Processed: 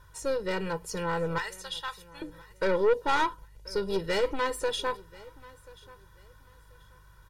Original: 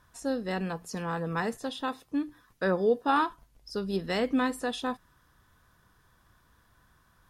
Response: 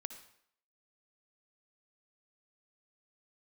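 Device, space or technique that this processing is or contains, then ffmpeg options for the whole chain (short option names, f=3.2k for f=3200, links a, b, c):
valve amplifier with mains hum: -filter_complex "[0:a]asettb=1/sr,asplit=3[a][b][c];[a]atrim=end=1.384[d];[b]atrim=start=1.38:end=2.22,asetpts=PTS-STARTPTS,afade=t=in:d=0.004:c=qsin,afade=t=out:st=0.836:d=0.004:c=qsin,highpass=1.5k[e];[c]atrim=start=2.216[f];[d][e]acrossfade=d=0.004:c1=hsin:c2=qsin[g];[g][f]acrossfade=d=0.004:c1=qsin:c2=hsin,aeval=exprs='(tanh(22.4*val(0)+0.35)-tanh(0.35))/22.4':c=same,aeval=exprs='val(0)+0.000631*(sin(2*PI*50*n/s)+sin(2*PI*2*50*n/s)/2+sin(2*PI*3*50*n/s)/3+sin(2*PI*4*50*n/s)/4+sin(2*PI*5*50*n/s)/5)':c=same,aecho=1:1:2.1:0.98,aecho=1:1:1035|2070:0.0794|0.0199,volume=2.5dB"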